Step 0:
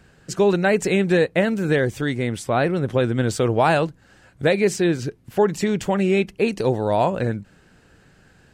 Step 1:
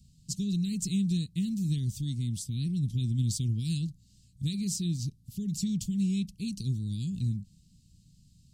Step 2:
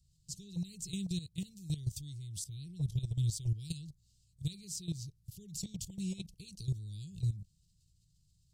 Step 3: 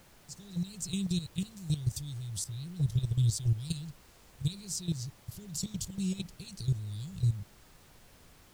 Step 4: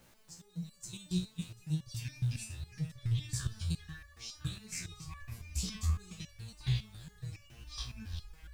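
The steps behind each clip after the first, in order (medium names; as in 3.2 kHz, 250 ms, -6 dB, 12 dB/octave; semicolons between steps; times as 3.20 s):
inverse Chebyshev band-stop 640–1300 Hz, stop band 80 dB; trim -3 dB
level held to a coarse grid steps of 14 dB; static phaser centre 580 Hz, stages 4; trim +2.5 dB
level rider gain up to 9.5 dB; added noise pink -54 dBFS; trim -4.5 dB
ever faster or slower copies 652 ms, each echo -7 st, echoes 3; resonator arpeggio 7.2 Hz 61–570 Hz; trim +4 dB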